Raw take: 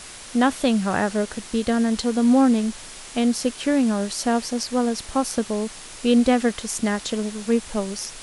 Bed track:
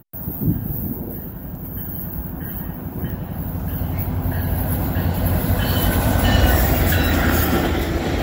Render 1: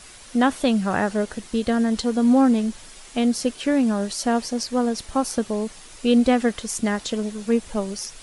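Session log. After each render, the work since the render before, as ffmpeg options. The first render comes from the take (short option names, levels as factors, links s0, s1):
-af "afftdn=nr=7:nf=-40"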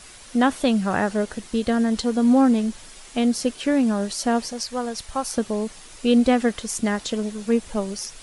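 -filter_complex "[0:a]asettb=1/sr,asplit=3[s0][s1][s2];[s0]atrim=end=4.524[s3];[s1]atrim=start=4.52:end=5.34,asetpts=PTS-STARTPTS,afade=t=in:d=0.004:c=qsin,afade=t=out:st=0.816:d=0.004:c=qsin,equalizer=f=280:t=o:w=1.6:g=-9[s4];[s2]atrim=start=5.336[s5];[s3][s4]acrossfade=d=0.004:c1=hsin:c2=qsin[s6];[s6][s5]acrossfade=d=0.004:c1=qsin:c2=hsin"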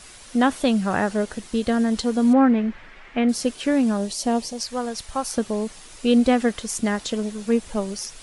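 -filter_complex "[0:a]asettb=1/sr,asplit=3[s0][s1][s2];[s0]atrim=end=2.334[s3];[s1]atrim=start=2.33:end=3.29,asetpts=PTS-STARTPTS,afade=t=in:d=0.004:c=qsin,afade=t=out:st=0.956:d=0.004:c=qsin,lowpass=f=2000:t=q:w=2.2[s4];[s2]atrim=start=3.286[s5];[s3][s4]acrossfade=d=0.004:c1=hsin:c2=qsin[s6];[s6][s5]acrossfade=d=0.004:c1=qsin:c2=hsin,asettb=1/sr,asplit=3[s7][s8][s9];[s7]atrim=end=3.974[s10];[s8]atrim=start=3.97:end=4.61,asetpts=PTS-STARTPTS,afade=t=in:d=0.004:c=qsin,afade=t=out:st=0.636:d=0.004:c=qsin,equalizer=f=1500:t=o:w=0.77:g=-9.5[s11];[s9]atrim=start=4.606[s12];[s10][s11]acrossfade=d=0.004:c1=hsin:c2=qsin[s13];[s13][s12]acrossfade=d=0.004:c1=qsin:c2=hsin"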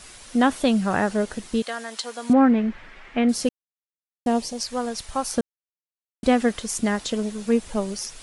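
-filter_complex "[0:a]asettb=1/sr,asplit=3[s0][s1][s2];[s0]atrim=end=1.624[s3];[s1]atrim=start=1.62:end=2.3,asetpts=PTS-STARTPTS,afade=t=in:d=0.004:c=qsin,afade=t=out:st=0.676:d=0.004:c=qsin,highpass=830[s4];[s2]atrim=start=2.296[s5];[s3][s4]acrossfade=d=0.004:c1=hsin:c2=qsin[s6];[s6][s5]acrossfade=d=0.004:c1=qsin:c2=hsin,asplit=5[s7][s8][s9][s10][s11];[s7]atrim=end=3.49,asetpts=PTS-STARTPTS,afade=t=out:st=3.486:d=0.004:c=hsin[s12];[s8]atrim=start=3.49:end=4.26,asetpts=PTS-STARTPTS,volume=0[s13];[s9]atrim=start=4.26:end=5.41,asetpts=PTS-STARTPTS,afade=t=in:d=0.004:c=hsin,afade=t=out:st=1.146:d=0.004:c=hsin[s14];[s10]atrim=start=5.41:end=6.23,asetpts=PTS-STARTPTS,volume=0[s15];[s11]atrim=start=6.23,asetpts=PTS-STARTPTS,afade=t=in:d=0.004:c=hsin[s16];[s12][s13][s14][s15][s16]concat=n=5:v=0:a=1"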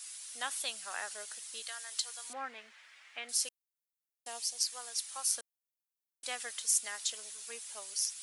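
-af "highpass=570,aderivative"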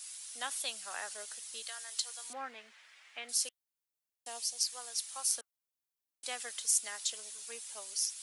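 -filter_complex "[0:a]acrossover=split=290|1200|2200[s0][s1][s2][s3];[s0]acrusher=bits=4:mode=log:mix=0:aa=0.000001[s4];[s2]flanger=delay=2.5:depth=7.6:regen=53:speed=1.9:shape=triangular[s5];[s4][s1][s5][s3]amix=inputs=4:normalize=0"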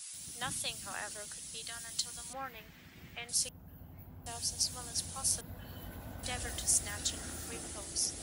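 -filter_complex "[1:a]volume=0.0376[s0];[0:a][s0]amix=inputs=2:normalize=0"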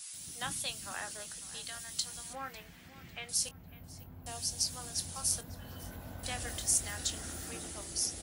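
-filter_complex "[0:a]asplit=2[s0][s1];[s1]adelay=23,volume=0.266[s2];[s0][s2]amix=inputs=2:normalize=0,asplit=2[s3][s4];[s4]adelay=549,lowpass=f=3900:p=1,volume=0.15,asplit=2[s5][s6];[s6]adelay=549,lowpass=f=3900:p=1,volume=0.42,asplit=2[s7][s8];[s8]adelay=549,lowpass=f=3900:p=1,volume=0.42,asplit=2[s9][s10];[s10]adelay=549,lowpass=f=3900:p=1,volume=0.42[s11];[s3][s5][s7][s9][s11]amix=inputs=5:normalize=0"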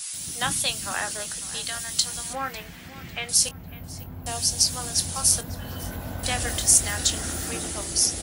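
-af "volume=3.98,alimiter=limit=0.891:level=0:latency=1"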